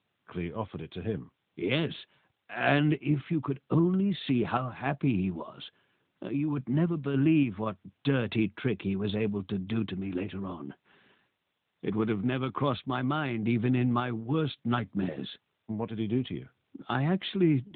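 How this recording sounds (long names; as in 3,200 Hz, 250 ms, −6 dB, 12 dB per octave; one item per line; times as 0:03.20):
sample-and-hold tremolo
a quantiser's noise floor 12 bits, dither triangular
AMR narrowband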